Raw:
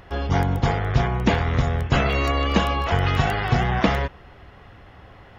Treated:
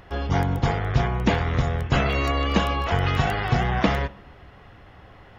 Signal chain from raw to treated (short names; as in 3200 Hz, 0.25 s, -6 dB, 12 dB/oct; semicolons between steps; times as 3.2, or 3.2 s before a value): on a send: LPF 4800 Hz + reverb RT60 1.0 s, pre-delay 5 ms, DRR 19.5 dB; on the sum: gain -1.5 dB